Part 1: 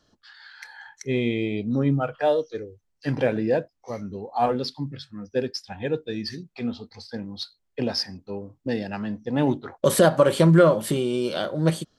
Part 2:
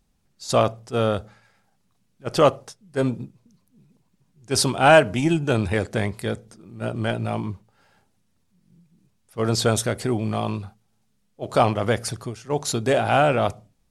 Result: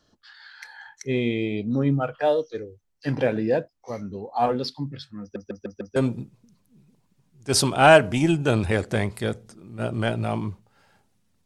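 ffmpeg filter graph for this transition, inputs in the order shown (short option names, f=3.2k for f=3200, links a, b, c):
-filter_complex "[0:a]apad=whole_dur=11.45,atrim=end=11.45,asplit=5[a][b][c][d][e];[a]atrim=end=5.362[f];[b]atrim=start=5.208:end=5.362[g];[c]atrim=start=5.208:end=5.362[h];[d]atrim=start=5.208:end=5.362[i];[e]atrim=start=5.208:end=5.362[j];[1:a]atrim=start=2.978:end=8.47[k];[f][g]acrossfade=d=0.004:c1=hsin:c2=hsin[l];[l][h]acrossfade=d=0.004:c1=hsin:c2=hsin[m];[m][i]acrossfade=d=0.004:c1=hsin:c2=hsin[n];[n][j]acrossfade=d=0.004:c1=hsin:c2=hsin[o];[o][k]acrossfade=d=0.004:c1=hsin:c2=hsin"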